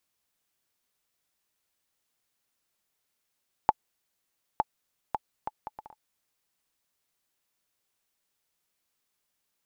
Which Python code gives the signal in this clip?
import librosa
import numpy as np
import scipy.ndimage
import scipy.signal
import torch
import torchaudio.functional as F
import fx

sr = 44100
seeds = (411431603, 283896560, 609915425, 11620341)

y = fx.bouncing_ball(sr, first_gap_s=0.91, ratio=0.6, hz=860.0, decay_ms=34.0, level_db=-7.0)